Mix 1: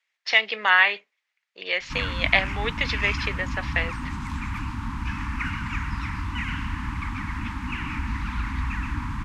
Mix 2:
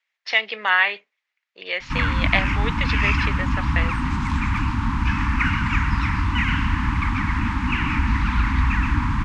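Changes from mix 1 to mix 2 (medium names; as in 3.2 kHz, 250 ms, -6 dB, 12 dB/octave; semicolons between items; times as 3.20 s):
background +8.5 dB; master: add distance through air 56 m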